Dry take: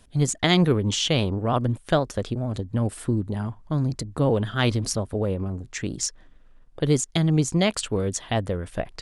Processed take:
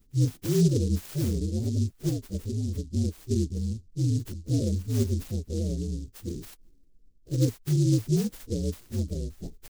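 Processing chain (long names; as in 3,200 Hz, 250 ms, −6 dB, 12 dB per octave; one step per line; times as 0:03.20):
partials spread apart or drawn together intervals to 123%
de-essing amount 60%
elliptic band-stop filter 410–6,900 Hz, stop band 50 dB
tempo change 0.93×
short delay modulated by noise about 5,600 Hz, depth 0.073 ms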